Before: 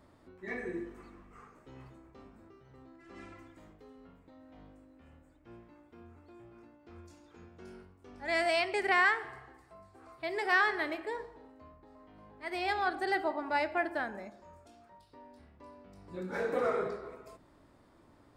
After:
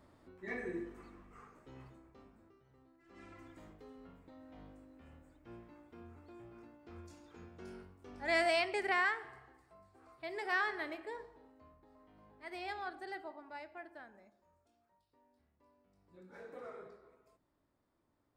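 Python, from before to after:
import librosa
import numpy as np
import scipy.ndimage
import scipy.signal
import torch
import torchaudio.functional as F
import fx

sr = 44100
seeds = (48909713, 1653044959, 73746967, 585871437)

y = fx.gain(x, sr, db=fx.line((1.78, -2.5), (2.97, -12.0), (3.51, 0.0), (8.27, 0.0), (9.13, -7.0), (12.33, -7.0), (13.65, -18.0)))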